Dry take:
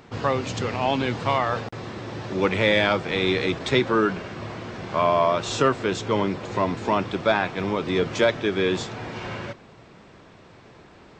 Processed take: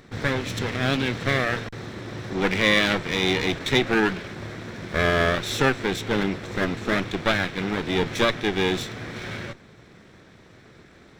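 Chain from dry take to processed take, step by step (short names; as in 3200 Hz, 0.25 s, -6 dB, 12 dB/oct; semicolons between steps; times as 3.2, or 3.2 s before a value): minimum comb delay 0.52 ms; dynamic EQ 2700 Hz, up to +4 dB, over -41 dBFS, Q 0.99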